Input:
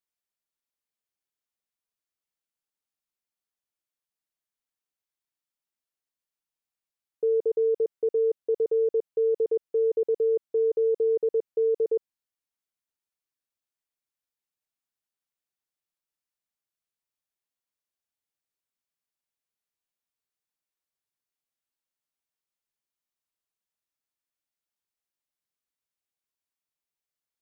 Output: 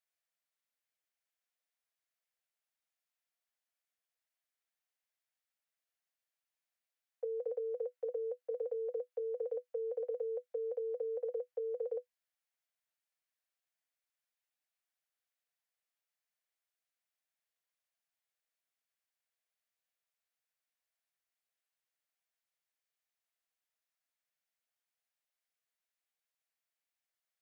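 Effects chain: rippled Chebyshev high-pass 480 Hz, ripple 6 dB; gain +3 dB

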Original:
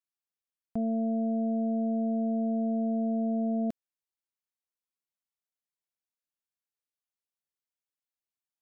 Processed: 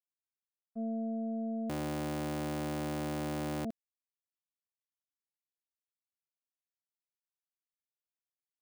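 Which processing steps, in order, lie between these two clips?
1.69–3.65 cycle switcher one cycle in 3, inverted; expander -23 dBFS; vocal rider

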